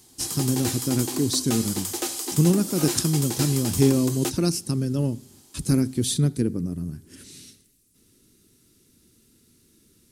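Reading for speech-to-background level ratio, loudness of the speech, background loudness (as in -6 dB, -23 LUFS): 4.0 dB, -24.5 LUFS, -28.5 LUFS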